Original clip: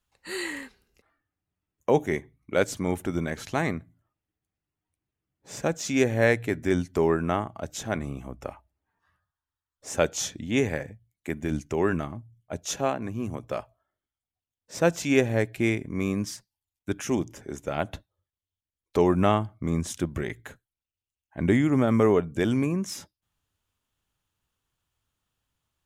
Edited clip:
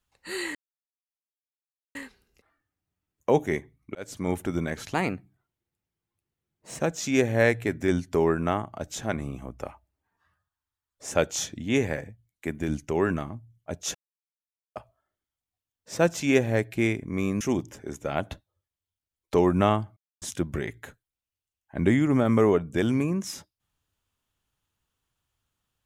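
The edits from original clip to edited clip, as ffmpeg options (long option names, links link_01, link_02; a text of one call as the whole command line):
ffmpeg -i in.wav -filter_complex "[0:a]asplit=10[link_01][link_02][link_03][link_04][link_05][link_06][link_07][link_08][link_09][link_10];[link_01]atrim=end=0.55,asetpts=PTS-STARTPTS,afade=type=out:start_time=0.546:duration=0.004:curve=hsin,apad=pad_dur=1.4[link_11];[link_02]atrim=start=0.55:end=2.55,asetpts=PTS-STARTPTS,afade=type=in:duration=0.004:curve=hsin,afade=type=out:start_time=1.996:duration=0.004:curve=hsin[link_12];[link_03]atrim=start=2.55:end=3.544,asetpts=PTS-STARTPTS,afade=type=in:duration=0.35[link_13];[link_04]atrim=start=3.54:end=5.62,asetpts=PTS-STARTPTS,asetrate=49392,aresample=44100[link_14];[link_05]atrim=start=5.616:end=12.77,asetpts=PTS-STARTPTS,afade=type=out:start_time=7.15:duration=0.004:curve=hsin[link_15];[link_06]atrim=start=12.77:end=13.58,asetpts=PTS-STARTPTS,volume=0[link_16];[link_07]atrim=start=13.58:end=16.232,asetpts=PTS-STARTPTS,afade=type=in:duration=0.004:curve=hsin[link_17];[link_08]atrim=start=17.028:end=19.59,asetpts=PTS-STARTPTS,afade=type=out:start_time=2.558:duration=0.004:curve=hsin[link_18];[link_09]atrim=start=19.59:end=19.84,asetpts=PTS-STARTPTS,volume=0[link_19];[link_10]atrim=start=19.84,asetpts=PTS-STARTPTS,afade=type=in:duration=0.004:curve=hsin[link_20];[link_11][link_12][link_13]concat=n=3:v=0:a=1[link_21];[link_21][link_14]acrossfade=duration=0.004:curve1=hsin:curve2=hsin[link_22];[link_15][link_16][link_17]concat=n=3:v=0:a=1[link_23];[link_22][link_23]acrossfade=duration=0.004:curve1=hsin:curve2=hsin[link_24];[link_18][link_19][link_20]concat=n=3:v=0:a=1[link_25];[link_24][link_25]acrossfade=duration=0.004:curve1=hsin:curve2=hsin" out.wav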